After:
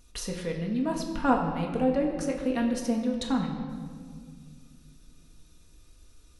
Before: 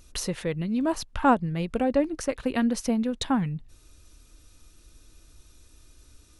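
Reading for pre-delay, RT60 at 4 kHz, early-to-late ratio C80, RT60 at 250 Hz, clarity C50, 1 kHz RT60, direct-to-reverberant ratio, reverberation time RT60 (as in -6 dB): 4 ms, 1.4 s, 6.5 dB, 2.9 s, 5.0 dB, 1.7 s, 0.5 dB, 2.1 s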